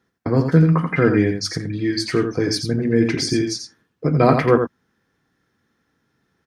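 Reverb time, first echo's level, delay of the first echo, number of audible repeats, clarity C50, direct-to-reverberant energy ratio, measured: no reverb audible, −7.0 dB, 86 ms, 1, no reverb audible, no reverb audible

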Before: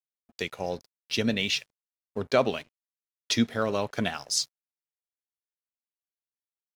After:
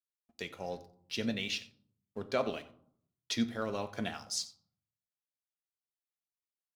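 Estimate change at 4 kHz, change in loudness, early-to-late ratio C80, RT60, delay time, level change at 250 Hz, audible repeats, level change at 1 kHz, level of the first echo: −8.5 dB, −8.5 dB, 16.5 dB, 0.60 s, 90 ms, −7.0 dB, 1, −8.0 dB, −18.5 dB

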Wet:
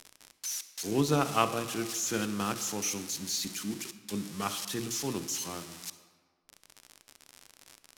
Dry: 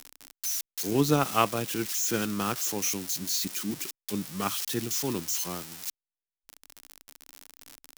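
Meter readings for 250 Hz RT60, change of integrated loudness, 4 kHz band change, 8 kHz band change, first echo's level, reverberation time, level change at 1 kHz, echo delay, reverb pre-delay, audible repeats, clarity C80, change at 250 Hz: 1.6 s, −3.5 dB, −2.5 dB, −3.0 dB, no echo audible, 1.7 s, −2.0 dB, no echo audible, 33 ms, no echo audible, 13.5 dB, −3.0 dB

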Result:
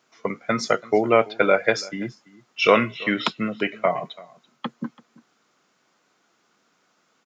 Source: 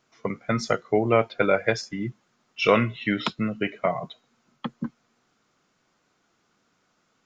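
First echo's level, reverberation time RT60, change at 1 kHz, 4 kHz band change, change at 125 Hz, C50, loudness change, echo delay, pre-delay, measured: −22.0 dB, no reverb audible, +3.5 dB, +4.0 dB, −4.5 dB, no reverb audible, +3.0 dB, 335 ms, no reverb audible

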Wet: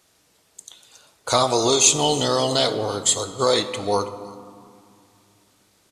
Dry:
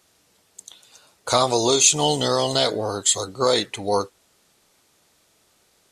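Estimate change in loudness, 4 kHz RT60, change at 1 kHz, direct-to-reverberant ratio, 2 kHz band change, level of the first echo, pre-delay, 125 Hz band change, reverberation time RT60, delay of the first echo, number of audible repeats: +0.5 dB, 0.95 s, +0.5 dB, 10.0 dB, +0.5 dB, −21.5 dB, 6 ms, +0.5 dB, 2.4 s, 327 ms, 1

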